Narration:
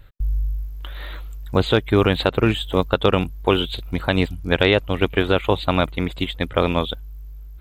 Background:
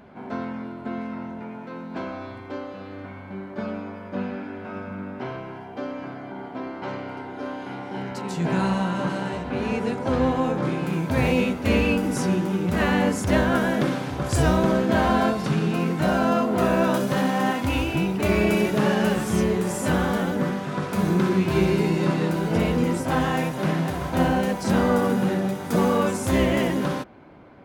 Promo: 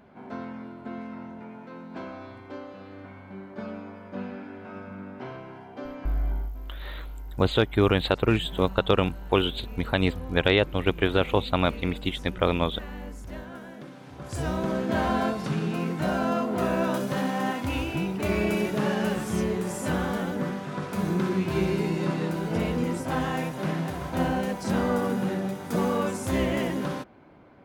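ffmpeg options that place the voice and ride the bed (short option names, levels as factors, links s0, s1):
-filter_complex "[0:a]adelay=5850,volume=0.596[s0];[1:a]volume=2.82,afade=t=out:st=6.28:d=0.24:silence=0.199526,afade=t=in:st=13.93:d=1.06:silence=0.177828[s1];[s0][s1]amix=inputs=2:normalize=0"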